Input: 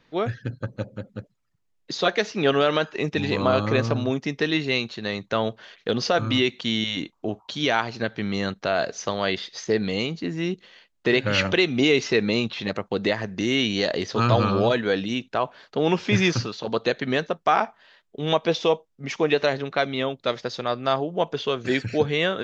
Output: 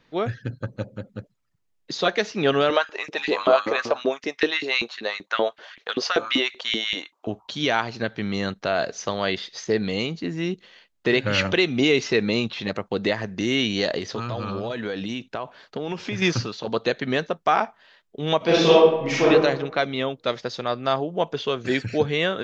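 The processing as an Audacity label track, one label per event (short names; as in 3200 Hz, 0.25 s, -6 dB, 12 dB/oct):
2.700000	7.270000	LFO high-pass saw up 5.2 Hz 290–2400 Hz
13.980000	16.220000	compressor 10:1, threshold -24 dBFS
18.370000	19.260000	reverb throw, RT60 0.98 s, DRR -7.5 dB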